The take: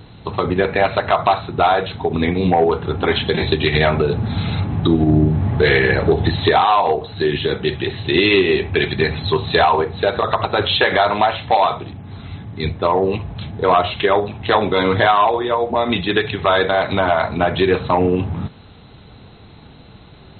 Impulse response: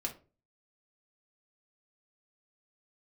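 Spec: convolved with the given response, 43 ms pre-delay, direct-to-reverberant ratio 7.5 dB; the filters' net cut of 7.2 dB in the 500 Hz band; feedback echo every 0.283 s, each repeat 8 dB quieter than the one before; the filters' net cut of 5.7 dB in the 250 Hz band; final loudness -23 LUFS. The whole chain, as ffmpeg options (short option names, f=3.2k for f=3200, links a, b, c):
-filter_complex "[0:a]equalizer=f=250:t=o:g=-5.5,equalizer=f=500:t=o:g=-8,aecho=1:1:283|566|849|1132|1415:0.398|0.159|0.0637|0.0255|0.0102,asplit=2[a][b];[1:a]atrim=start_sample=2205,adelay=43[c];[b][c]afir=irnorm=-1:irlink=0,volume=-8.5dB[d];[a][d]amix=inputs=2:normalize=0,volume=-4dB"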